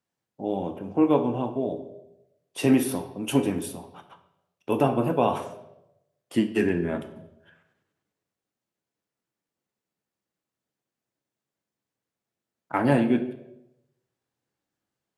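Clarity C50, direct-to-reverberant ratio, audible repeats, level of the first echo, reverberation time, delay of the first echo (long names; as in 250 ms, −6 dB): 11.5 dB, 7.0 dB, no echo audible, no echo audible, 0.90 s, no echo audible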